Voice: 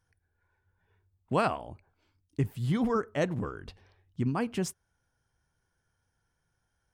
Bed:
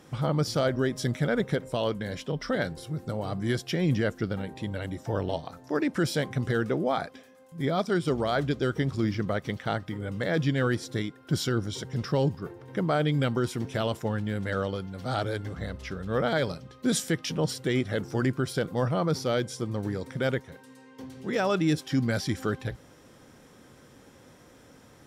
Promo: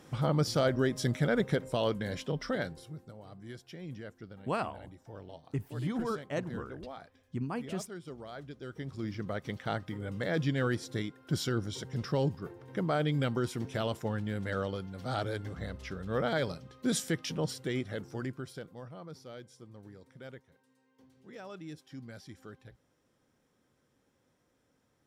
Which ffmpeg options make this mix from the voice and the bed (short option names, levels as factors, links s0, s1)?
-filter_complex "[0:a]adelay=3150,volume=0.501[s0];[1:a]volume=3.76,afade=t=out:st=2.24:d=0.89:silence=0.158489,afade=t=in:st=8.59:d=1.15:silence=0.211349,afade=t=out:st=17.2:d=1.63:silence=0.16788[s1];[s0][s1]amix=inputs=2:normalize=0"